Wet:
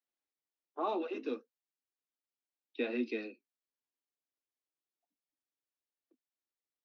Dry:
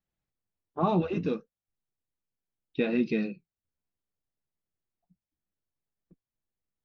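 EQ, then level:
Butterworth high-pass 240 Hz 96 dB per octave
high-frequency loss of the air 140 metres
high-shelf EQ 3,800 Hz +11.5 dB
−6.5 dB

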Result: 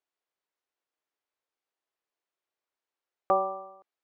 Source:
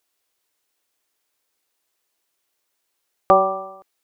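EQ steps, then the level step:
high-frequency loss of the air 77 metres
low-shelf EQ 250 Hz −11 dB
high-shelf EQ 2,100 Hz −10 dB
−7.5 dB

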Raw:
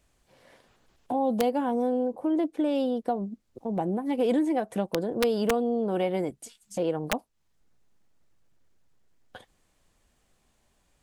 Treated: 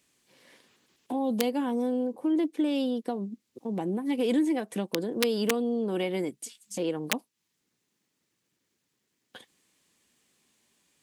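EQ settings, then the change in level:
high-pass filter 240 Hz 12 dB per octave
parametric band 680 Hz −12.5 dB 1.2 octaves
parametric band 1,400 Hz −5 dB 0.47 octaves
+4.5 dB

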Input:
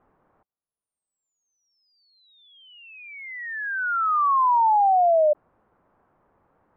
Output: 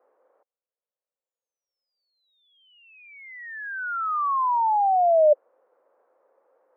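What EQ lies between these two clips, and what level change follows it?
high-pass filter 370 Hz 24 dB per octave
low-pass filter 2,600 Hz
parametric band 520 Hz +14.5 dB 0.44 octaves
−4.5 dB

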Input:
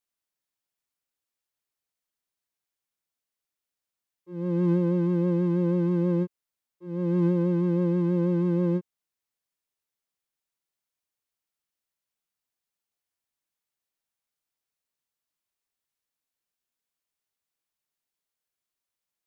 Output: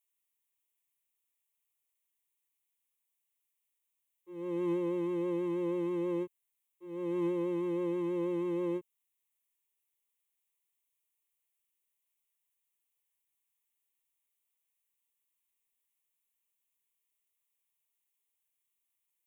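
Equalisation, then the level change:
high-shelf EQ 2,400 Hz +11.5 dB
phaser with its sweep stopped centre 980 Hz, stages 8
−4.0 dB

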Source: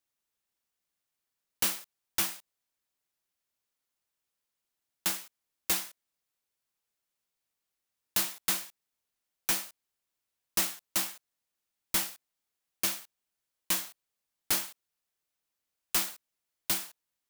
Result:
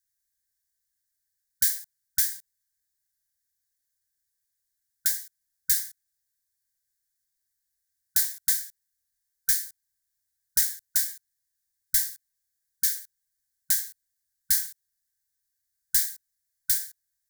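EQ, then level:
linear-phase brick-wall band-stop 150–1,500 Hz
parametric band 2,700 Hz −6 dB 0.76 octaves
phaser with its sweep stopped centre 720 Hz, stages 6
+7.0 dB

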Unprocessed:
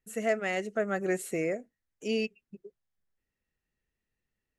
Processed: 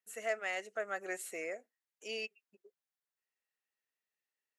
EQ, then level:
high-pass filter 670 Hz 12 dB per octave
−4.0 dB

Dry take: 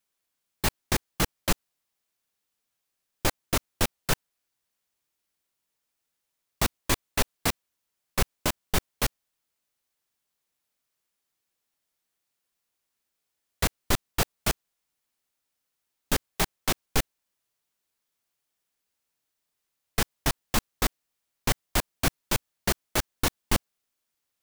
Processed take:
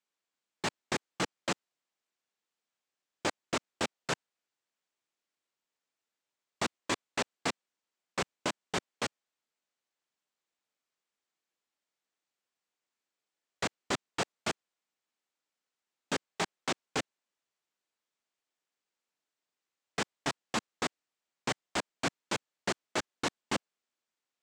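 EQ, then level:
high-pass filter 210 Hz 12 dB per octave
high-frequency loss of the air 130 metres
parametric band 7,800 Hz +8.5 dB 0.6 octaves
−3.0 dB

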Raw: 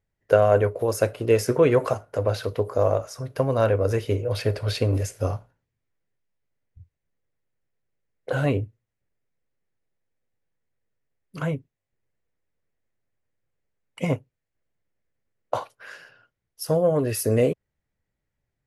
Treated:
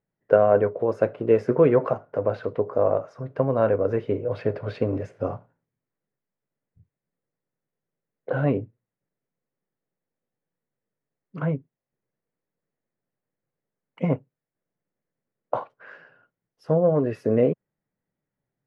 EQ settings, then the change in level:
low-pass filter 1,600 Hz 12 dB per octave
low shelf with overshoot 110 Hz −12.5 dB, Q 1.5
0.0 dB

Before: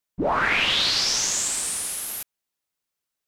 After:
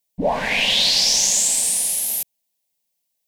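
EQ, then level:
high-shelf EQ 10,000 Hz +6.5 dB
phaser with its sweep stopped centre 350 Hz, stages 6
+5.5 dB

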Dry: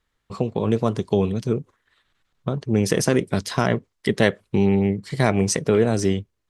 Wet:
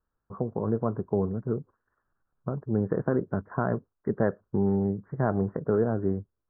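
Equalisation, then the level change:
Butterworth low-pass 1,600 Hz 72 dB per octave
−6.5 dB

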